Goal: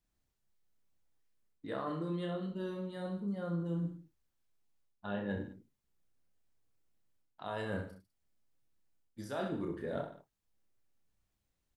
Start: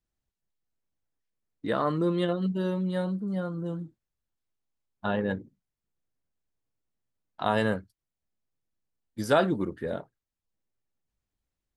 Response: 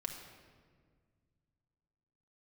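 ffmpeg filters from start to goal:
-af "areverse,acompressor=threshold=-37dB:ratio=10,areverse,aecho=1:1:30|64.5|104.2|149.8|202.3:0.631|0.398|0.251|0.158|0.1,volume=1dB"

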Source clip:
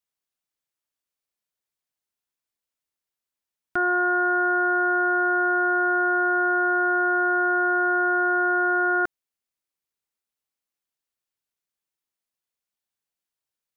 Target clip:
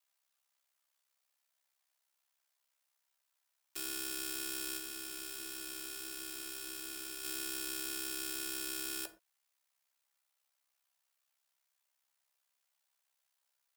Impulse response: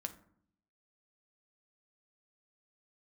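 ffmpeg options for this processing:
-filter_complex "[0:a]highpass=frequency=620:width=0.5412,highpass=frequency=620:width=1.3066,acontrast=45,alimiter=limit=-21.5dB:level=0:latency=1,acontrast=39,aeval=exprs='(mod(31.6*val(0)+1,2)-1)/31.6':channel_layout=same,aeval=exprs='val(0)*sin(2*PI*33*n/s)':channel_layout=same,asoftclip=type=hard:threshold=-32.5dB,asplit=3[link_01][link_02][link_03];[link_01]afade=type=out:start_time=4.77:duration=0.02[link_04];[link_02]flanger=delay=3.4:depth=4.4:regen=-64:speed=1.6:shape=sinusoidal,afade=type=in:start_time=4.77:duration=0.02,afade=type=out:start_time=7.23:duration=0.02[link_05];[link_03]afade=type=in:start_time=7.23:duration=0.02[link_06];[link_04][link_05][link_06]amix=inputs=3:normalize=0[link_07];[1:a]atrim=start_sample=2205,afade=type=out:start_time=0.18:duration=0.01,atrim=end_sample=8379[link_08];[link_07][link_08]afir=irnorm=-1:irlink=0"

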